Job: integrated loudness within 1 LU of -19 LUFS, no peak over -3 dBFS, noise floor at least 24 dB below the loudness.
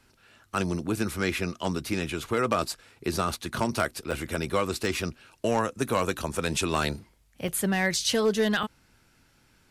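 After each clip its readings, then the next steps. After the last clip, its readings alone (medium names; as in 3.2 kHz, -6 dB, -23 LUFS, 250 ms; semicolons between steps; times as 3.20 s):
clipped samples 0.3%; clipping level -16.0 dBFS; dropouts 5; longest dropout 3.7 ms; loudness -28.5 LUFS; peak level -16.0 dBFS; loudness target -19.0 LUFS
-> clip repair -16 dBFS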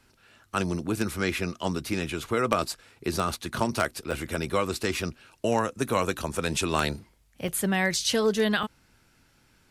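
clipped samples 0.0%; dropouts 5; longest dropout 3.7 ms
-> interpolate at 4.11/4.83/5.88/7.48/8.63 s, 3.7 ms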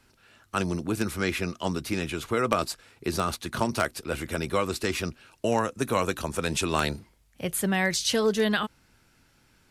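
dropouts 0; loudness -28.0 LUFS; peak level -7.0 dBFS; loudness target -19.0 LUFS
-> trim +9 dB; peak limiter -3 dBFS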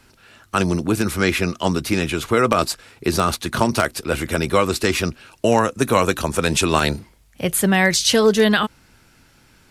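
loudness -19.5 LUFS; peak level -3.0 dBFS; noise floor -54 dBFS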